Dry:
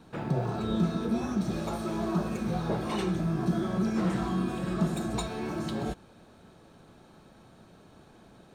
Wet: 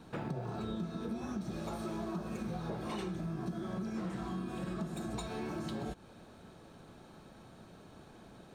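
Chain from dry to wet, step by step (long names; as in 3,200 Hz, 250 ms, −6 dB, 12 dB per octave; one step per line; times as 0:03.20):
downward compressor 6 to 1, threshold −36 dBFS, peak gain reduction 14 dB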